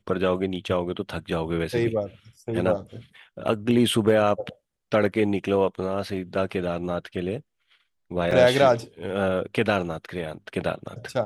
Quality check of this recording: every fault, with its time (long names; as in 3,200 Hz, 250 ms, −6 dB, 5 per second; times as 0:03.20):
0:08.31: drop-out 4.5 ms